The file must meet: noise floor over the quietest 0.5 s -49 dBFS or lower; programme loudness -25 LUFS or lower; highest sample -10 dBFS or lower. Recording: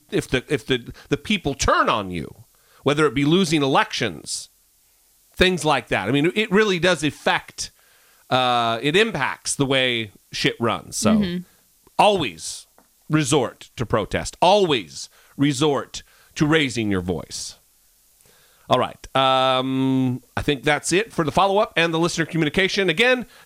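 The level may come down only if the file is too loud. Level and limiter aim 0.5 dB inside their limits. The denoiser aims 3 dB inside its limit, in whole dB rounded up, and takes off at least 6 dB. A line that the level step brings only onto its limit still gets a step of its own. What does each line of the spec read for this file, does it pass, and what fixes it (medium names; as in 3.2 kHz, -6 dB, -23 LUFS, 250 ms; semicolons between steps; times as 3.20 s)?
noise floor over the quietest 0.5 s -59 dBFS: pass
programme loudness -20.5 LUFS: fail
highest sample -5.0 dBFS: fail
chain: trim -5 dB; peak limiter -10.5 dBFS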